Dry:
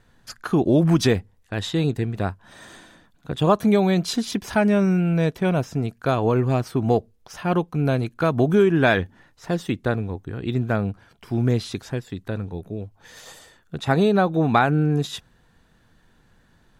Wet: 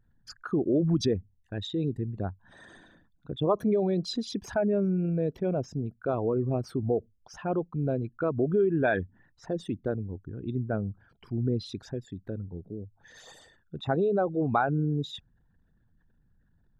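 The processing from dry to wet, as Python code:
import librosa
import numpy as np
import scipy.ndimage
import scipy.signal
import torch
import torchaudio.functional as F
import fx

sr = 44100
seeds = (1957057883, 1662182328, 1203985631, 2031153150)

y = fx.envelope_sharpen(x, sr, power=2.0)
y = y * 10.0 ** (-7.5 / 20.0)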